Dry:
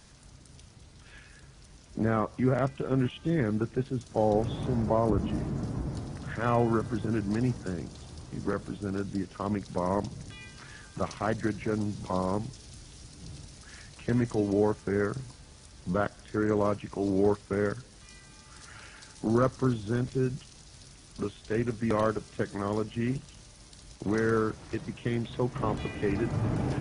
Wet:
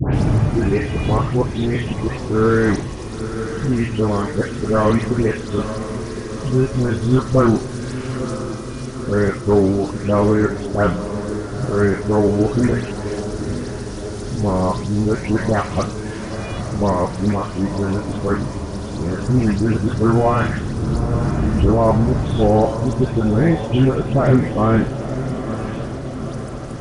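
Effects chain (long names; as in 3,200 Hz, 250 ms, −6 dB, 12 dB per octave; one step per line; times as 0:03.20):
played backwards from end to start
low-shelf EQ 72 Hz +11 dB
hum removal 59.98 Hz, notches 34
all-pass dispersion highs, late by 143 ms, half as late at 2,000 Hz
in parallel at −8 dB: gain into a clipping stage and back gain 20.5 dB
on the sum: feedback delay with all-pass diffusion 934 ms, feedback 64%, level −10 dB
level +8 dB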